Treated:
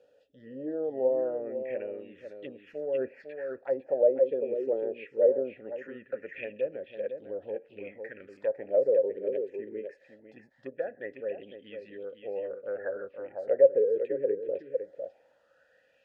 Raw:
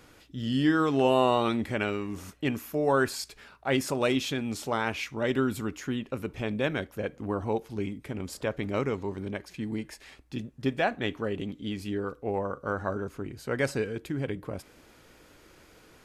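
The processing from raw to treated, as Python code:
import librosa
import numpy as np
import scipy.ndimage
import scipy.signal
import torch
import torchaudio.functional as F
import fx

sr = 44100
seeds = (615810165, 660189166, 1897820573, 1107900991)

p1 = fx.env_lowpass_down(x, sr, base_hz=560.0, full_db=-23.5)
p2 = fx.vowel_filter(p1, sr, vowel='e')
p3 = fx.transient(p2, sr, attack_db=-2, sustain_db=7, at=(2.66, 3.21), fade=0.02)
p4 = fx.env_phaser(p3, sr, low_hz=330.0, high_hz=3500.0, full_db=-37.5)
p5 = p4 + fx.echo_single(p4, sr, ms=503, db=-7.5, dry=0)
p6 = fx.bell_lfo(p5, sr, hz=0.21, low_hz=390.0, high_hz=3700.0, db=16)
y = p6 * librosa.db_to_amplitude(3.5)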